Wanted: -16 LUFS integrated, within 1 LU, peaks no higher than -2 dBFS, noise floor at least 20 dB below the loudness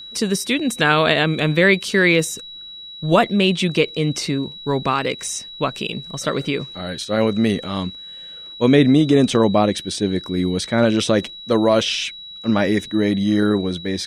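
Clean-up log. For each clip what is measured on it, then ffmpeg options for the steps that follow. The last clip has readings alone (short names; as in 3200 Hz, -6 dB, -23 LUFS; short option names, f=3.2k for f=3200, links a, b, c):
steady tone 3900 Hz; tone level -34 dBFS; loudness -19.0 LUFS; peak -1.0 dBFS; loudness target -16.0 LUFS
-> -af "bandreject=f=3.9k:w=30"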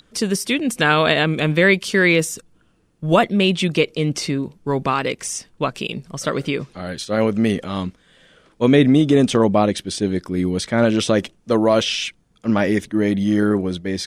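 steady tone none; loudness -19.0 LUFS; peak -1.5 dBFS; loudness target -16.0 LUFS
-> -af "volume=3dB,alimiter=limit=-2dB:level=0:latency=1"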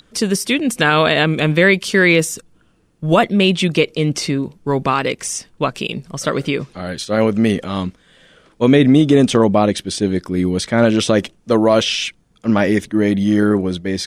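loudness -16.5 LUFS; peak -2.0 dBFS; noise floor -55 dBFS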